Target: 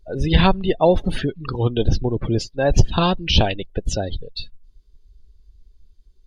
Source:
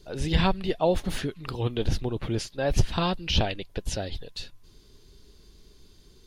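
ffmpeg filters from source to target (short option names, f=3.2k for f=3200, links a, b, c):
-af "afftdn=nr=25:nf=-37,volume=8dB"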